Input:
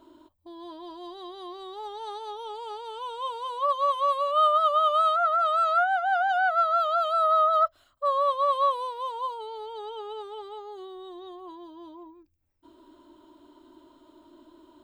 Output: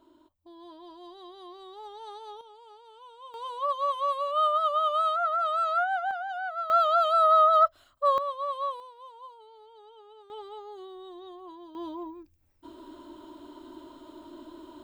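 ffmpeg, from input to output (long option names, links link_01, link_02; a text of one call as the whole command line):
ffmpeg -i in.wav -af "asetnsamples=nb_out_samples=441:pad=0,asendcmd='2.41 volume volume -14.5dB;3.34 volume volume -3.5dB;6.11 volume volume -10dB;6.7 volume volume 2dB;8.18 volume volume -8dB;8.8 volume volume -15dB;10.3 volume volume -2.5dB;11.75 volume volume 7.5dB',volume=-6dB" out.wav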